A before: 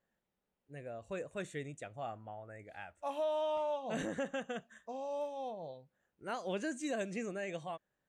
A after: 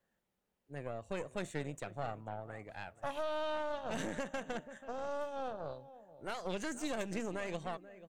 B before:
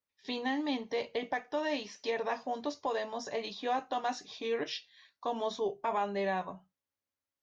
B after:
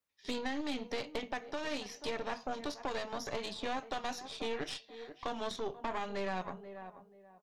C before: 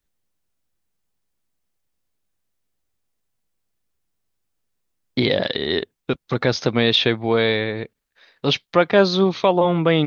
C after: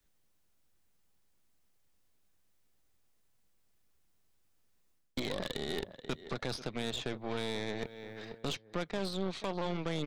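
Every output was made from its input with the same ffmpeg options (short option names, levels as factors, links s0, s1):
-filter_complex "[0:a]areverse,acompressor=threshold=0.0355:ratio=4,areverse,asplit=2[s0][s1];[s1]adelay=484,lowpass=f=1700:p=1,volume=0.158,asplit=2[s2][s3];[s3]adelay=484,lowpass=f=1700:p=1,volume=0.29,asplit=2[s4][s5];[s5]adelay=484,lowpass=f=1700:p=1,volume=0.29[s6];[s0][s2][s4][s6]amix=inputs=4:normalize=0,acrossover=split=170|1500|3900[s7][s8][s9][s10];[s7]acompressor=threshold=0.00355:ratio=4[s11];[s8]acompressor=threshold=0.01:ratio=4[s12];[s9]acompressor=threshold=0.00355:ratio=4[s13];[s10]acompressor=threshold=0.00355:ratio=4[s14];[s11][s12][s13][s14]amix=inputs=4:normalize=0,aeval=exprs='0.0531*(cos(1*acos(clip(val(0)/0.0531,-1,1)))-cos(1*PI/2))+0.00841*(cos(6*acos(clip(val(0)/0.0531,-1,1)))-cos(6*PI/2))':c=same,volume=1.26"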